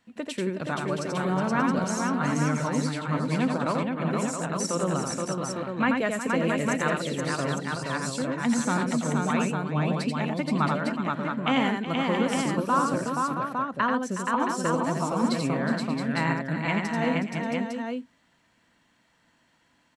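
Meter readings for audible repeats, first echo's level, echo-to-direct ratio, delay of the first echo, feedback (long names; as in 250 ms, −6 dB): 6, −4.5 dB, 1.5 dB, 86 ms, repeats not evenly spaced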